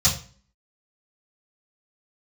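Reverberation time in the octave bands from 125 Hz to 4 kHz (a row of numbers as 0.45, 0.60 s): 0.50, 0.60, 0.40, 0.40, 0.40, 0.35 s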